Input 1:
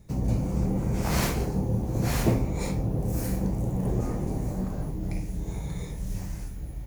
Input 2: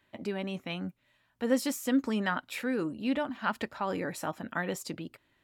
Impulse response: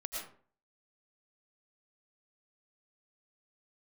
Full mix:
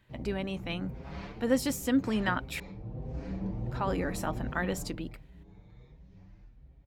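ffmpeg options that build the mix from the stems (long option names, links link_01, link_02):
-filter_complex "[0:a]lowpass=frequency=4000:width=0.5412,lowpass=frequency=4000:width=1.3066,asplit=2[link_01][link_02];[link_02]adelay=6.3,afreqshift=1.4[link_03];[link_01][link_03]amix=inputs=2:normalize=1,volume=-5dB,afade=type=in:start_time=2.8:duration=0.54:silence=0.398107,afade=type=out:start_time=4.77:duration=0.41:silence=0.251189[link_04];[1:a]volume=0.5dB,asplit=3[link_05][link_06][link_07];[link_05]atrim=end=2.6,asetpts=PTS-STARTPTS,afade=type=out:start_time=2.596:duration=0.004:curve=hsin[link_08];[link_06]atrim=start=2.6:end=3.66,asetpts=PTS-STARTPTS,volume=0[link_09];[link_07]atrim=start=3.66,asetpts=PTS-STARTPTS,afade=type=in:duration=0.004:curve=hsin[link_10];[link_08][link_09][link_10]concat=n=3:v=0:a=1[link_11];[link_04][link_11]amix=inputs=2:normalize=0"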